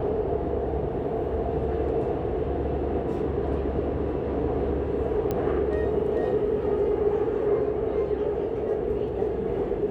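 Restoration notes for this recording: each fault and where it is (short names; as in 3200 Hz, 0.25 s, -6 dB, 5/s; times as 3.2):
5.31 pop -15 dBFS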